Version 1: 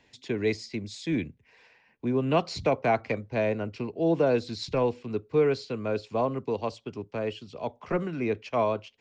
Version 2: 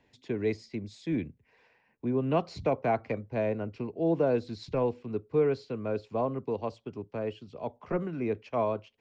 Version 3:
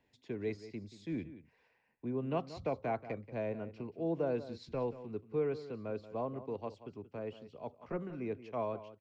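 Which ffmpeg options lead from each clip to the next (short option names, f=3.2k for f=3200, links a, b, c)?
-af "highshelf=f=2.1k:g=-10.5,volume=-2dB"
-filter_complex "[0:a]asplit=2[a][b];[b]adelay=180.8,volume=-14dB,highshelf=f=4k:g=-4.07[c];[a][c]amix=inputs=2:normalize=0,volume=-8dB"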